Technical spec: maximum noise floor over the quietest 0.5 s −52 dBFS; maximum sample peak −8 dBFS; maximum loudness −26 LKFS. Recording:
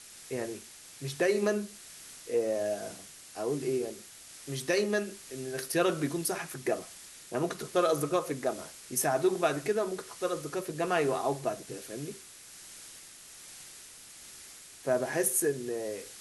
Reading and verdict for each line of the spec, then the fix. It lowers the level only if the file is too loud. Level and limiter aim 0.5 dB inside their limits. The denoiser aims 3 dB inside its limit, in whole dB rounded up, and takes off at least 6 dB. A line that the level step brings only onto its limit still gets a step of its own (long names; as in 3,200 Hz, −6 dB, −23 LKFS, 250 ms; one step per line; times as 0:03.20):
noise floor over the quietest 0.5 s −50 dBFS: out of spec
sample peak −13.5 dBFS: in spec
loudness −31.5 LKFS: in spec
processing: broadband denoise 6 dB, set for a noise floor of −50 dBFS